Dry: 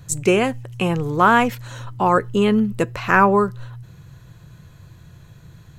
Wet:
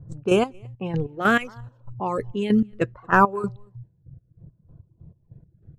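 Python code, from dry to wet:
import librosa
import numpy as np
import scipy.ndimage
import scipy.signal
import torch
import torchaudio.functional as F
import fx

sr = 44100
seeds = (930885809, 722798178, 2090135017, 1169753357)

p1 = fx.env_lowpass(x, sr, base_hz=440.0, full_db=-11.5)
p2 = fx.chopper(p1, sr, hz=3.2, depth_pct=60, duty_pct=40)
p3 = p2 + fx.echo_single(p2, sr, ms=229, db=-20.0, dry=0)
p4 = fx.dereverb_blind(p3, sr, rt60_s=1.2)
y = fx.filter_lfo_notch(p4, sr, shape='saw_down', hz=0.68, low_hz=840.0, high_hz=2600.0, q=1.4)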